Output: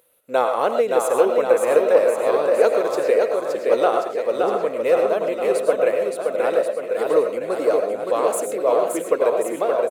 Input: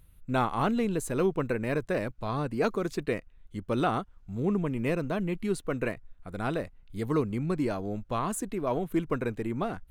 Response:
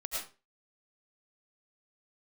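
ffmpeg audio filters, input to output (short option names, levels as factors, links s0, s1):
-filter_complex "[0:a]highpass=f=510:t=q:w=4.9,highshelf=f=7100:g=6,aecho=1:1:570|1083|1545|1960|2334:0.631|0.398|0.251|0.158|0.1,asplit=2[s0][s1];[1:a]atrim=start_sample=2205,atrim=end_sample=6174[s2];[s1][s2]afir=irnorm=-1:irlink=0,volume=0.596[s3];[s0][s3]amix=inputs=2:normalize=0"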